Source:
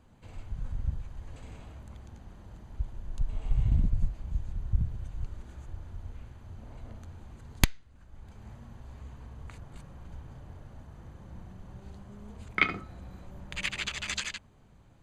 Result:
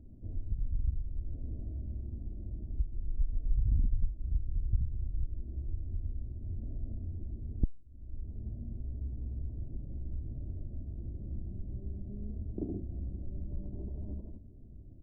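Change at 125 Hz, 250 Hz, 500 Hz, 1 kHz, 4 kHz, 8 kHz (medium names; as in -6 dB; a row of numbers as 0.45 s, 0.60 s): -0.5 dB, -1.0 dB, -2.5 dB, under -25 dB, under -40 dB, under -35 dB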